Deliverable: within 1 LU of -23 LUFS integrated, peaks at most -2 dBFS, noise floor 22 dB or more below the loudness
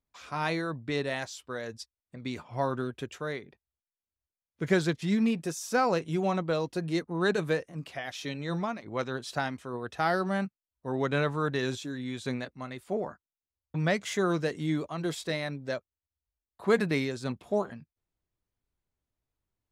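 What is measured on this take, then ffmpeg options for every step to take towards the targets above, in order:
loudness -31.5 LUFS; peak level -11.0 dBFS; loudness target -23.0 LUFS
-> -af "volume=2.66"

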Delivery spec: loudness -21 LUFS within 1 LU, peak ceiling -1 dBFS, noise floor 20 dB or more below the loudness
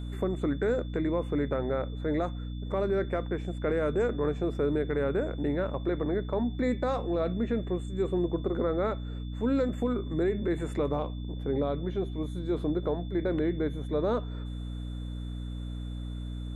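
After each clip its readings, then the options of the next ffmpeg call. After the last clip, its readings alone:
hum 60 Hz; highest harmonic 300 Hz; hum level -34 dBFS; steady tone 3.5 kHz; tone level -54 dBFS; loudness -31.0 LUFS; peak level -17.0 dBFS; loudness target -21.0 LUFS
-> -af "bandreject=f=60:t=h:w=6,bandreject=f=120:t=h:w=6,bandreject=f=180:t=h:w=6,bandreject=f=240:t=h:w=6,bandreject=f=300:t=h:w=6"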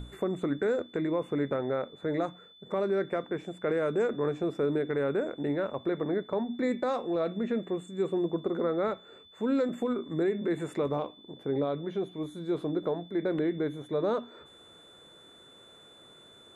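hum not found; steady tone 3.5 kHz; tone level -54 dBFS
-> -af "bandreject=f=3500:w=30"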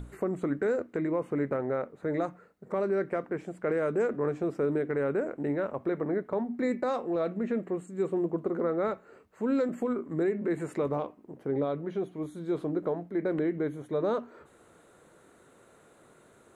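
steady tone not found; loudness -31.0 LUFS; peak level -19.0 dBFS; loudness target -21.0 LUFS
-> -af "volume=3.16"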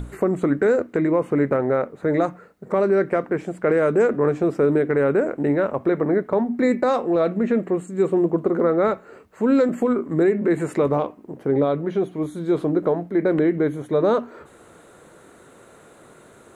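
loudness -21.0 LUFS; peak level -9.0 dBFS; noise floor -49 dBFS

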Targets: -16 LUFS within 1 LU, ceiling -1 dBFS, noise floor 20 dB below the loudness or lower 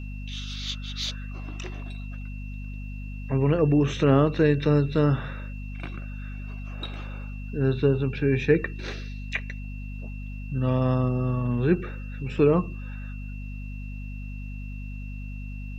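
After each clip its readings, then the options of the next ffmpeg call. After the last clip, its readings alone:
hum 50 Hz; highest harmonic 250 Hz; hum level -33 dBFS; steady tone 2.7 kHz; tone level -47 dBFS; loudness -25.5 LUFS; peak level -7.0 dBFS; loudness target -16.0 LUFS
-> -af "bandreject=f=50:t=h:w=6,bandreject=f=100:t=h:w=6,bandreject=f=150:t=h:w=6,bandreject=f=200:t=h:w=6,bandreject=f=250:t=h:w=6"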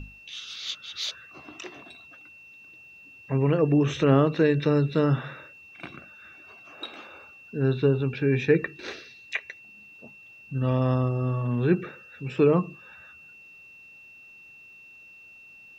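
hum not found; steady tone 2.7 kHz; tone level -47 dBFS
-> -af "bandreject=f=2700:w=30"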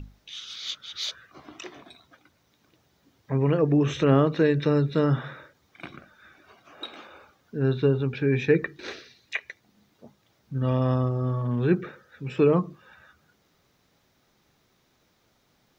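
steady tone not found; loudness -25.0 LUFS; peak level -6.5 dBFS; loudness target -16.0 LUFS
-> -af "volume=2.82,alimiter=limit=0.891:level=0:latency=1"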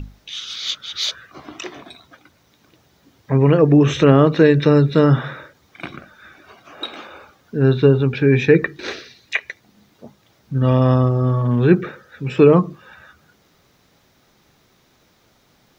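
loudness -16.5 LUFS; peak level -1.0 dBFS; noise floor -58 dBFS

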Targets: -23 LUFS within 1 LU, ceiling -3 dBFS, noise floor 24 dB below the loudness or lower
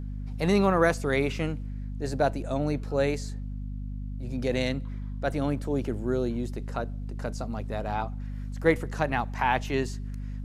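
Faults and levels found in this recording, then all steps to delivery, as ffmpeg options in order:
hum 50 Hz; highest harmonic 250 Hz; hum level -32 dBFS; loudness -29.0 LUFS; peak level -7.5 dBFS; loudness target -23.0 LUFS
-> -af "bandreject=f=50:t=h:w=4,bandreject=f=100:t=h:w=4,bandreject=f=150:t=h:w=4,bandreject=f=200:t=h:w=4,bandreject=f=250:t=h:w=4"
-af "volume=2,alimiter=limit=0.708:level=0:latency=1"

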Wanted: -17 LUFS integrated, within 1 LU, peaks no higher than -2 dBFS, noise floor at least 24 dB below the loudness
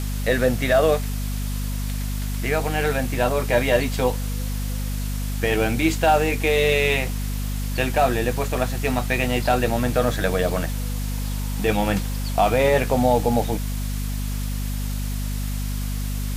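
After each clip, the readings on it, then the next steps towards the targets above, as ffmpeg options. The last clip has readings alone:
hum 50 Hz; highest harmonic 250 Hz; hum level -23 dBFS; noise floor -26 dBFS; noise floor target -47 dBFS; loudness -23.0 LUFS; peak level -4.5 dBFS; loudness target -17.0 LUFS
-> -af "bandreject=f=50:t=h:w=6,bandreject=f=100:t=h:w=6,bandreject=f=150:t=h:w=6,bandreject=f=200:t=h:w=6,bandreject=f=250:t=h:w=6"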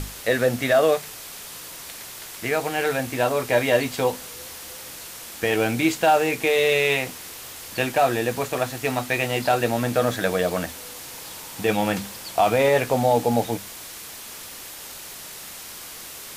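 hum not found; noise floor -39 dBFS; noise floor target -47 dBFS
-> -af "afftdn=nr=8:nf=-39"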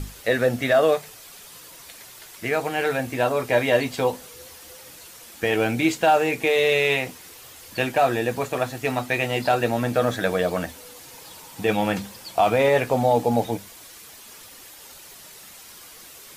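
noise floor -45 dBFS; noise floor target -47 dBFS
-> -af "afftdn=nr=6:nf=-45"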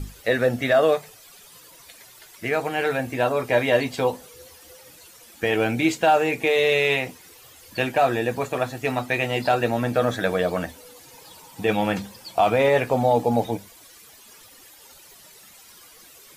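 noise floor -49 dBFS; loudness -22.5 LUFS; peak level -6.5 dBFS; loudness target -17.0 LUFS
-> -af "volume=1.88,alimiter=limit=0.794:level=0:latency=1"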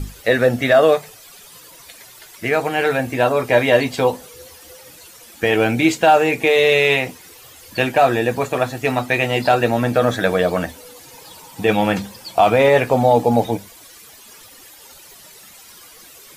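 loudness -17.0 LUFS; peak level -2.0 dBFS; noise floor -44 dBFS

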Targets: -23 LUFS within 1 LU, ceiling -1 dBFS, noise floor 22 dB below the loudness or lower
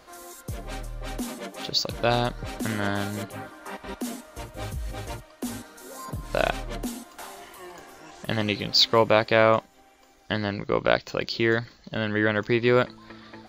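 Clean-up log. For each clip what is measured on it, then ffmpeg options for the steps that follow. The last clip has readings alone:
loudness -25.5 LUFS; peak level -2.5 dBFS; loudness target -23.0 LUFS
-> -af "volume=1.33,alimiter=limit=0.891:level=0:latency=1"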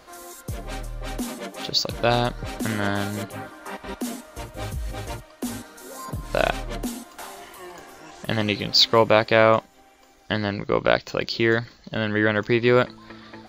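loudness -23.0 LUFS; peak level -1.0 dBFS; noise floor -53 dBFS

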